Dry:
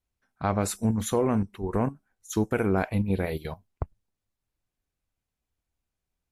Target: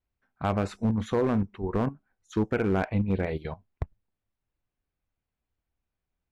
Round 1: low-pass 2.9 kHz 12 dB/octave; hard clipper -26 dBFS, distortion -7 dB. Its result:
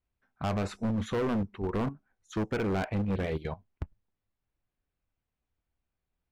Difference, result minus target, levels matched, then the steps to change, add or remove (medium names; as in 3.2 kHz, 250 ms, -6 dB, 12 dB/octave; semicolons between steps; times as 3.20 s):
hard clipper: distortion +11 dB
change: hard clipper -18 dBFS, distortion -17 dB